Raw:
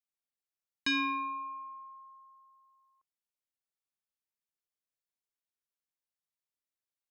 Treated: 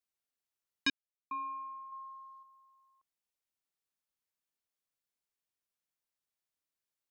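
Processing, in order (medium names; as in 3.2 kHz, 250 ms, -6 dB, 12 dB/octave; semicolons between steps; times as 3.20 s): 0.90–1.31 s: mute; 1.92–2.43 s: graphic EQ 250/1000/4000 Hz -6/+5/+7 dB; trim +1 dB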